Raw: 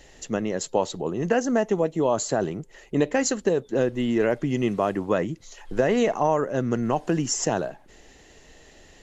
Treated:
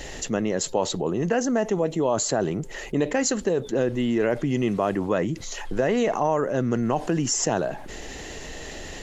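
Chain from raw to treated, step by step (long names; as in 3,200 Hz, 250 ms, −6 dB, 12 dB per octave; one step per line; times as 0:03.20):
envelope flattener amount 50%
level −2.5 dB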